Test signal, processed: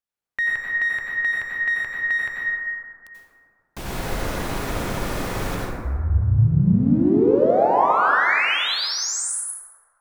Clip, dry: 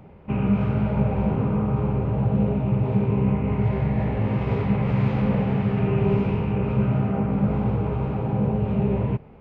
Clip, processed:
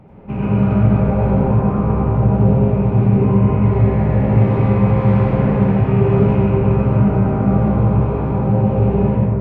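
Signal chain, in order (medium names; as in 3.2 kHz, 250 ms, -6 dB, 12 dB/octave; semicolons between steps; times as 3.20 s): treble shelf 2.4 kHz -6.5 dB; in parallel at -8 dB: one-sided clip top -30.5 dBFS; on the sum: plate-style reverb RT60 2.2 s, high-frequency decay 0.3×, pre-delay 75 ms, DRR -5.5 dB; trim -1 dB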